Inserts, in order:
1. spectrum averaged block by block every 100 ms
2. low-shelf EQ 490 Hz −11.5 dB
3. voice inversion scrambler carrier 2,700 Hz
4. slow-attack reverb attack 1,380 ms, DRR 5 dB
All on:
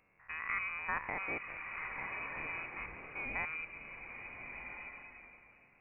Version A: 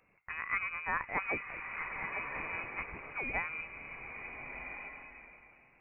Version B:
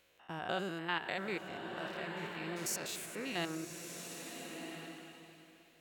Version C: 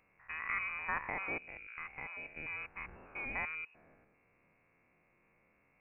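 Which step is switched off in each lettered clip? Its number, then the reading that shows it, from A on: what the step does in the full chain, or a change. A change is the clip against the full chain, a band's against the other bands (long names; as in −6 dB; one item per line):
1, change in integrated loudness +2.5 LU
3, 2 kHz band −13.0 dB
4, change in momentary loudness spread −2 LU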